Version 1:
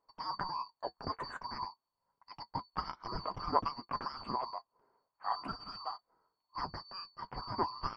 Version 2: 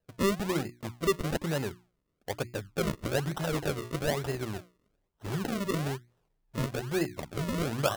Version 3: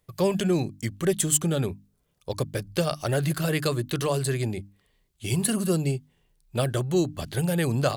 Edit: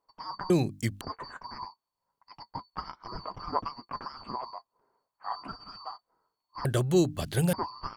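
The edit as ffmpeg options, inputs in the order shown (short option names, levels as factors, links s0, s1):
-filter_complex "[2:a]asplit=2[s0][s1];[0:a]asplit=3[s2][s3][s4];[s2]atrim=end=0.502[s5];[s0]atrim=start=0.498:end=1.012[s6];[s3]atrim=start=1.008:end=6.652[s7];[s1]atrim=start=6.648:end=7.532[s8];[s4]atrim=start=7.528[s9];[s5][s6]acrossfade=d=0.004:c1=hsin:c2=hsin[s10];[s10][s7]acrossfade=d=0.004:c1=hsin:c2=hsin[s11];[s11][s8]acrossfade=d=0.004:c1=hsin:c2=hsin[s12];[s12][s9]acrossfade=d=0.004:c1=hsin:c2=hsin"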